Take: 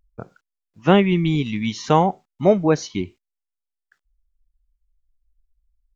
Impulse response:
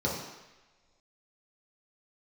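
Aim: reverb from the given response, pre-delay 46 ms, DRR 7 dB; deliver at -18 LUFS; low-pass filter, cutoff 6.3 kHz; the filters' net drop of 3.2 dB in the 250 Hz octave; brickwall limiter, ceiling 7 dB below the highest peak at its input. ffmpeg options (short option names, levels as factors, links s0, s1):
-filter_complex "[0:a]lowpass=6300,equalizer=f=250:t=o:g=-5,alimiter=limit=0.299:level=0:latency=1,asplit=2[s0][s1];[1:a]atrim=start_sample=2205,adelay=46[s2];[s1][s2]afir=irnorm=-1:irlink=0,volume=0.158[s3];[s0][s3]amix=inputs=2:normalize=0,volume=1.5"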